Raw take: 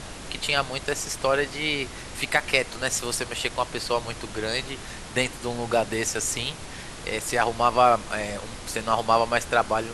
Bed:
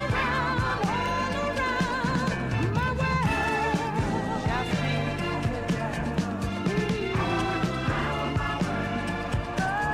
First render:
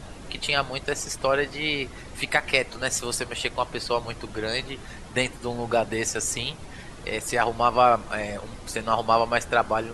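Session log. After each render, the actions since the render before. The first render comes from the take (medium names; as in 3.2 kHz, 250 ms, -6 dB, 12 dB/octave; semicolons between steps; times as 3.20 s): noise reduction 9 dB, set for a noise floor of -39 dBFS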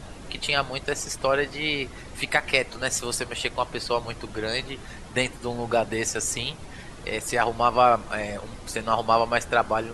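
no audible change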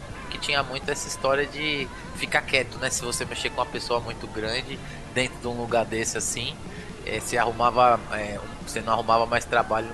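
add bed -14.5 dB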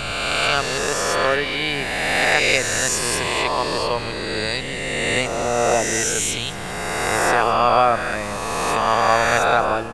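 reverse spectral sustain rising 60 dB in 2.62 s; delay 215 ms -16.5 dB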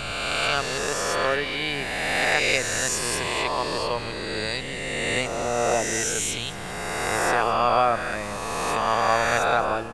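trim -4.5 dB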